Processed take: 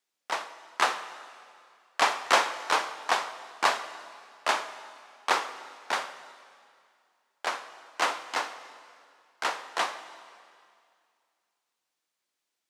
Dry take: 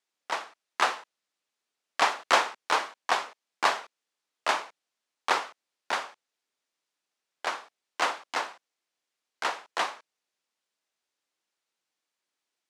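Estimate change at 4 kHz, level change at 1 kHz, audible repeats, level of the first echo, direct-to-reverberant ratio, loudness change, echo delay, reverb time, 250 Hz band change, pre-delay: +1.0 dB, +0.5 dB, no echo, no echo, 11.0 dB, 0.0 dB, no echo, 2.3 s, +0.5 dB, 5 ms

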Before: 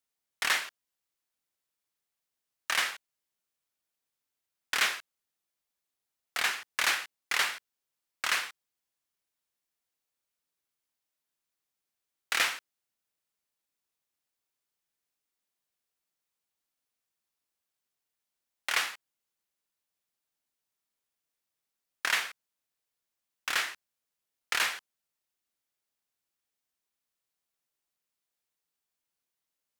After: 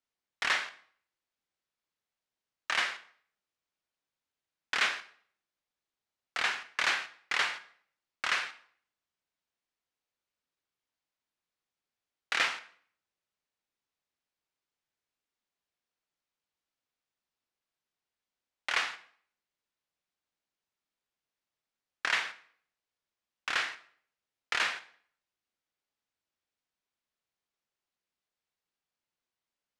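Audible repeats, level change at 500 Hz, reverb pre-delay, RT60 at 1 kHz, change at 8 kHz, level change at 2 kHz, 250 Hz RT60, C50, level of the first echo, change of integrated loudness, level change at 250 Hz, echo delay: no echo, 0.0 dB, 26 ms, 0.55 s, -7.5 dB, -0.5 dB, 0.55 s, 14.5 dB, no echo, -1.5 dB, 0.0 dB, no echo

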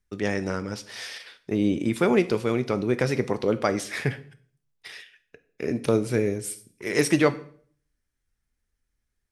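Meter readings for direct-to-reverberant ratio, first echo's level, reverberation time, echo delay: 11.0 dB, no echo, 0.50 s, no echo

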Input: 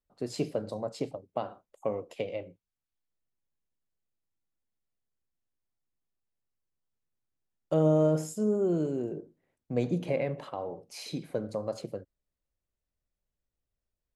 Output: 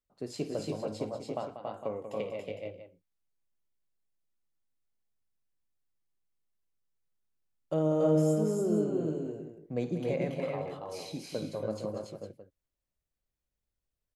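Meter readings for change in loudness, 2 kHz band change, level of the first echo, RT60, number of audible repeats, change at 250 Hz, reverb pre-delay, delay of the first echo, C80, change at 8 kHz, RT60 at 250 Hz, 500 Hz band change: -1.5 dB, -1.0 dB, -13.0 dB, no reverb, 4, -0.5 dB, no reverb, 54 ms, no reverb, -1.0 dB, no reverb, -1.0 dB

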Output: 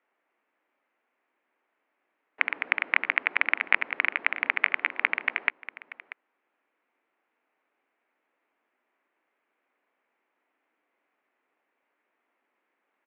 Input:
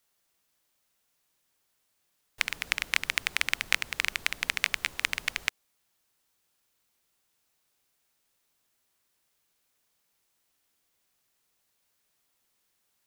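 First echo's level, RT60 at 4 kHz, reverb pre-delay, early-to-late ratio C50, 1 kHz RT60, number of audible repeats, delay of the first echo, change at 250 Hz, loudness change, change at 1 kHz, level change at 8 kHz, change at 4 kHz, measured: -16.0 dB, no reverb, no reverb, no reverb, no reverb, 1, 637 ms, +4.5 dB, +3.0 dB, +6.5 dB, under -40 dB, -8.5 dB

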